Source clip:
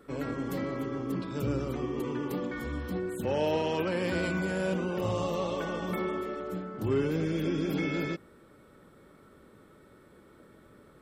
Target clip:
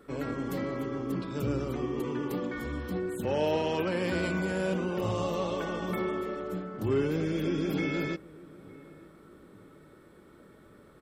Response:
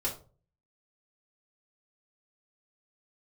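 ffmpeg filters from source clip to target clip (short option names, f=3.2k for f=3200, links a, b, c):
-filter_complex "[0:a]asplit=2[a][b];[b]adelay=907,lowpass=f=1.2k:p=1,volume=-20.5dB,asplit=2[c][d];[d]adelay=907,lowpass=f=1.2k:p=1,volume=0.47,asplit=2[e][f];[f]adelay=907,lowpass=f=1.2k:p=1,volume=0.47[g];[a][c][e][g]amix=inputs=4:normalize=0,asplit=2[h][i];[1:a]atrim=start_sample=2205,lowpass=8.6k[j];[i][j]afir=irnorm=-1:irlink=0,volume=-26dB[k];[h][k]amix=inputs=2:normalize=0"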